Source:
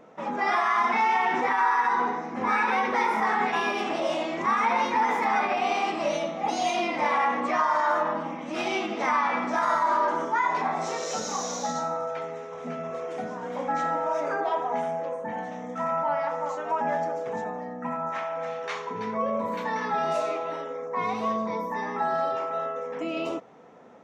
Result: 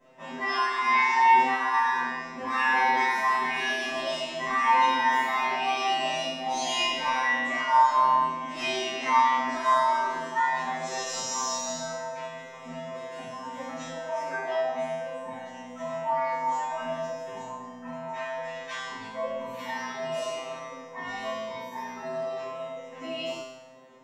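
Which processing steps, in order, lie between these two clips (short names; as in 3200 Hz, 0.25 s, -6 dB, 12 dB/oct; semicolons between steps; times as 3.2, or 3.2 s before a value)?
high shelf 2700 Hz +9.5 dB; resonator 130 Hz, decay 0.99 s, harmonics all, mix 100%; reverb RT60 0.20 s, pre-delay 3 ms, DRR -7.5 dB; gain +4 dB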